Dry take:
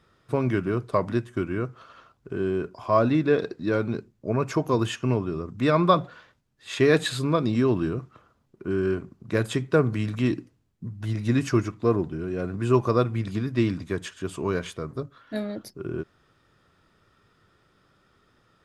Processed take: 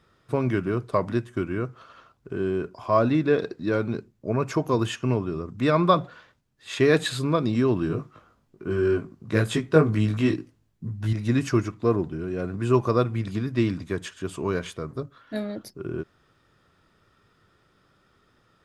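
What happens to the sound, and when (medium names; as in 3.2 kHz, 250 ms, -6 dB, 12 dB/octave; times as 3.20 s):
7.88–11.13 s: doubling 19 ms -2 dB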